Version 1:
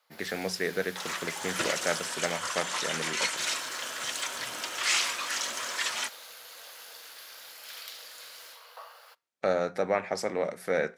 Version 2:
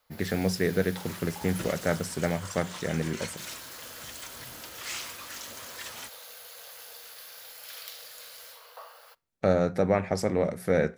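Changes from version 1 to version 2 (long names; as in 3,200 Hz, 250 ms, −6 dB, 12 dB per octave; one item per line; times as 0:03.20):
second sound −10.0 dB
master: remove meter weighting curve A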